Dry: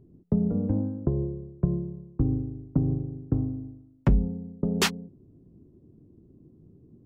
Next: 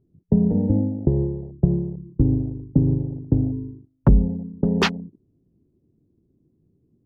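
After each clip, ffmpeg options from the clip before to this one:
ffmpeg -i in.wav -af "afwtdn=0.0178,highshelf=frequency=3400:gain=-6.5,volume=6.5dB" out.wav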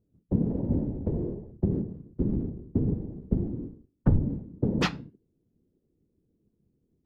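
ffmpeg -i in.wav -af "flanger=delay=4.3:depth=8.5:regen=77:speed=0.33:shape=triangular,afftfilt=real='hypot(re,im)*cos(2*PI*random(0))':imag='hypot(re,im)*sin(2*PI*random(1))':win_size=512:overlap=0.75,volume=3dB" out.wav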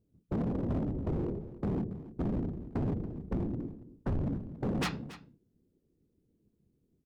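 ffmpeg -i in.wav -af "asoftclip=type=hard:threshold=-27.5dB,aecho=1:1:280:0.158,volume=-1dB" out.wav

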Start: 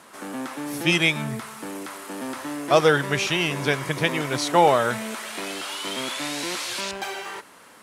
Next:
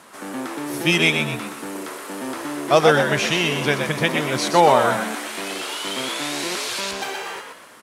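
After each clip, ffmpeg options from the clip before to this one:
ffmpeg -i in.wav -filter_complex "[0:a]asplit=5[link_01][link_02][link_03][link_04][link_05];[link_02]adelay=123,afreqshift=74,volume=-6dB[link_06];[link_03]adelay=246,afreqshift=148,volume=-14.6dB[link_07];[link_04]adelay=369,afreqshift=222,volume=-23.3dB[link_08];[link_05]adelay=492,afreqshift=296,volume=-31.9dB[link_09];[link_01][link_06][link_07][link_08][link_09]amix=inputs=5:normalize=0,volume=2dB" out.wav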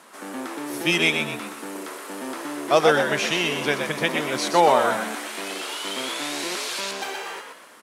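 ffmpeg -i in.wav -af "highpass=200,volume=-2.5dB" out.wav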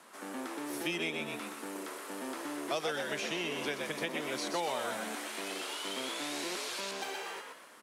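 ffmpeg -i in.wav -filter_complex "[0:a]acrossover=split=180|820|2000[link_01][link_02][link_03][link_04];[link_01]acompressor=threshold=-52dB:ratio=4[link_05];[link_02]acompressor=threshold=-29dB:ratio=4[link_06];[link_03]acompressor=threshold=-38dB:ratio=4[link_07];[link_04]acompressor=threshold=-31dB:ratio=4[link_08];[link_05][link_06][link_07][link_08]amix=inputs=4:normalize=0,volume=-7dB" out.wav

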